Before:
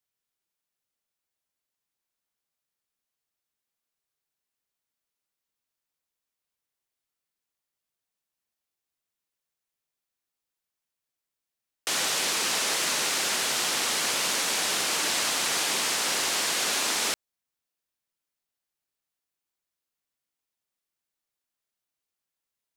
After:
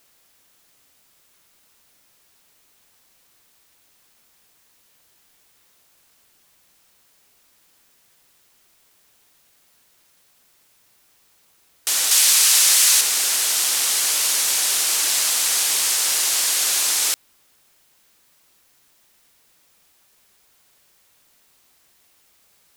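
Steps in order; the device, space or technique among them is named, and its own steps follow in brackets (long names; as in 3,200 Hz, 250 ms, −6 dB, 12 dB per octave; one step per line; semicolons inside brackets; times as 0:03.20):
turntable without a phono preamp (RIAA equalisation recording; white noise bed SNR 33 dB)
0:12.11–0:13.01: tilt shelving filter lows −5.5 dB, about 800 Hz
level −2 dB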